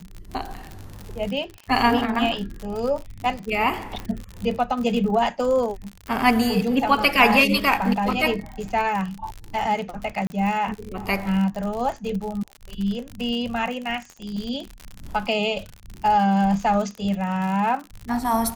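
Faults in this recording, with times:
crackle 57/s -28 dBFS
4 pop -18 dBFS
10.27–10.3 gap 30 ms

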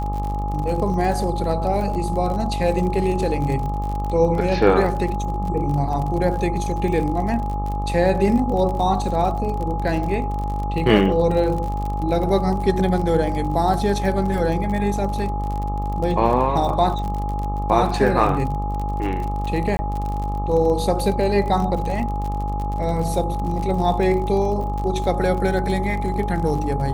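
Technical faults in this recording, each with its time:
buzz 50 Hz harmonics 26 -25 dBFS
crackle 49/s -27 dBFS
tone 830 Hz -27 dBFS
19.77–19.79 gap 20 ms

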